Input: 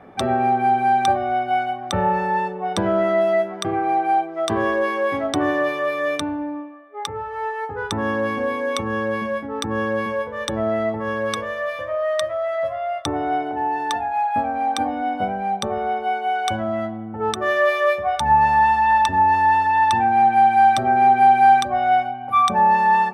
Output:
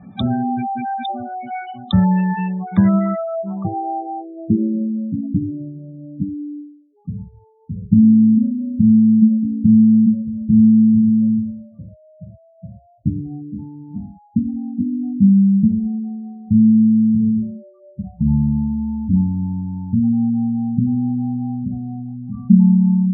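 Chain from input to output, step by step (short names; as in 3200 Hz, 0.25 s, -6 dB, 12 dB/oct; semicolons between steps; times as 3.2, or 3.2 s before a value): low-pass sweep 3600 Hz -> 210 Hz, 2.21–5.06; spectral gate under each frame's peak -15 dB strong; resonant low shelf 290 Hz +12.5 dB, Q 3; gain -5 dB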